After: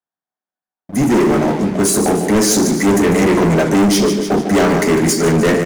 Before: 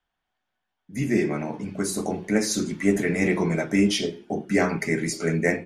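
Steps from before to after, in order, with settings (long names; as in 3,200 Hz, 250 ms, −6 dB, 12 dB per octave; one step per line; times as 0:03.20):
high-pass filter 160 Hz 12 dB per octave
parametric band 2,800 Hz −12.5 dB 1.1 octaves
on a send: repeating echo 150 ms, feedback 48%, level −11 dB
on the sum: leveller curve on the samples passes 5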